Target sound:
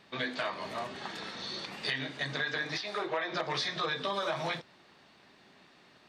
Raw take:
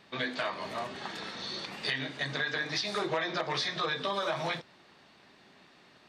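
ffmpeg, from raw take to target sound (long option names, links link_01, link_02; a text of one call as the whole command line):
ffmpeg -i in.wav -filter_complex "[0:a]asplit=3[link_01][link_02][link_03];[link_01]afade=type=out:start_time=2.76:duration=0.02[link_04];[link_02]bass=frequency=250:gain=-12,treble=frequency=4000:gain=-10,afade=type=in:start_time=2.76:duration=0.02,afade=type=out:start_time=3.31:duration=0.02[link_05];[link_03]afade=type=in:start_time=3.31:duration=0.02[link_06];[link_04][link_05][link_06]amix=inputs=3:normalize=0,volume=-1dB" out.wav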